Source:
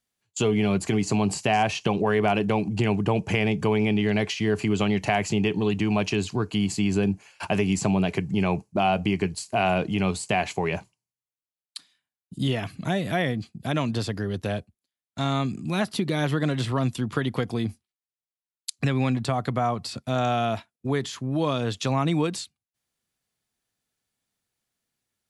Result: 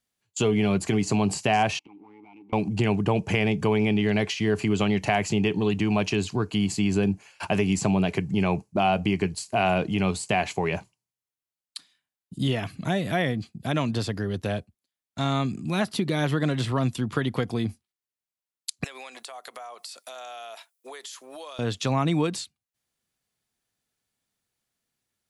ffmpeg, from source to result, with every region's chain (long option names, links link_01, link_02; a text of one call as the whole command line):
ffmpeg -i in.wav -filter_complex "[0:a]asettb=1/sr,asplit=3[link_01][link_02][link_03];[link_01]atrim=end=1.794[link_04];[link_02]atrim=start=1.79:end=2.53,asetpts=PTS-STARTPTS,afade=type=in:duration=0.004:curve=qsin,afade=type=out:start_time=0.736:duration=0.004:curve=qsin,aeval=exprs='if(lt(val(0),0),0.251*val(0),val(0))':channel_layout=same,asplit=3[link_05][link_06][link_07];[link_05]bandpass=frequency=300:width_type=q:width=8,volume=0dB[link_08];[link_06]bandpass=frequency=870:width_type=q:width=8,volume=-6dB[link_09];[link_07]bandpass=frequency=2240:width_type=q:width=8,volume=-9dB[link_10];[link_08][link_09][link_10]amix=inputs=3:normalize=0,acompressor=threshold=-55dB:ratio=2:attack=3.2:release=140:knee=1:detection=peak[link_11];[link_03]atrim=start=2.526[link_12];[link_04][link_11]acrossfade=duration=0.004:curve1=hsin:curve2=qsin[link_13];[link_13][link_12]acrossfade=duration=0.004:curve1=qsin:curve2=hsin,asettb=1/sr,asplit=3[link_14][link_15][link_16];[link_14]atrim=end=18.844[link_17];[link_15]atrim=start=18.84:end=21.59,asetpts=PTS-STARTPTS,afade=type=in:duration=0.004:curve=qsin,afade=type=out:start_time=2.746:duration=0.004:curve=qsin,highpass=frequency=490:width=0.5412,highpass=frequency=490:width=1.3066,aemphasis=mode=production:type=75kf,acompressor=threshold=-37dB:ratio=8:attack=3.2:release=140:knee=1:detection=peak[link_18];[link_16]atrim=start=21.586[link_19];[link_17][link_18]acrossfade=duration=0.004:curve1=hsin:curve2=qsin[link_20];[link_20][link_19]acrossfade=duration=0.004:curve1=qsin:curve2=hsin" out.wav